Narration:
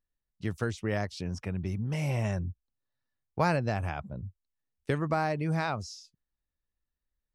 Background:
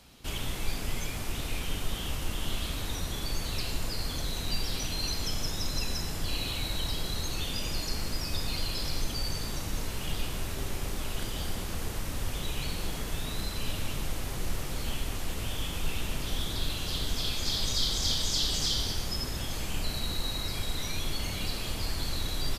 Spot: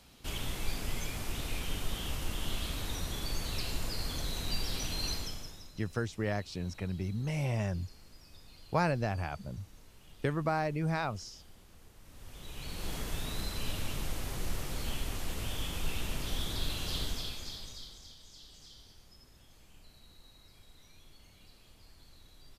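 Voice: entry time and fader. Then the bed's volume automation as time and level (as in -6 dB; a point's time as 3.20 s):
5.35 s, -2.5 dB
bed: 5.13 s -3 dB
5.78 s -23 dB
11.96 s -23 dB
12.93 s -3 dB
17.02 s -3 dB
18.14 s -25.5 dB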